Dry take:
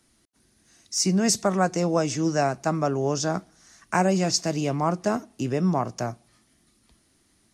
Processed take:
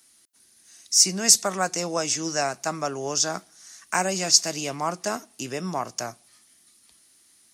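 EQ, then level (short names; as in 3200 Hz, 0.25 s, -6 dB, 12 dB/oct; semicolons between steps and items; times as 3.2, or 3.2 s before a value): tilt +3.5 dB/oct; -1.0 dB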